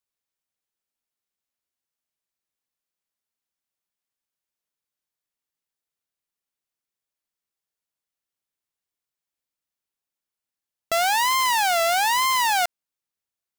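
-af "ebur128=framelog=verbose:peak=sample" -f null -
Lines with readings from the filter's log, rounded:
Integrated loudness:
  I:         -20.2 LUFS
  Threshold: -30.2 LUFS
Loudness range:
  LRA:         8.1 LU
  Threshold: -43.5 LUFS
  LRA low:   -29.8 LUFS
  LRA high:  -21.8 LUFS
Sample peak:
  Peak:      -15.8 dBFS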